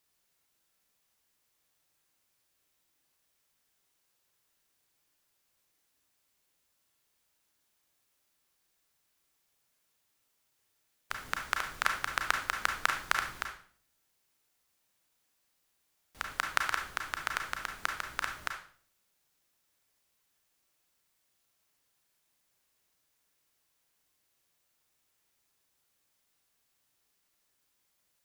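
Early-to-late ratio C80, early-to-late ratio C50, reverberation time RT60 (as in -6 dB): 11.0 dB, 6.0 dB, 0.50 s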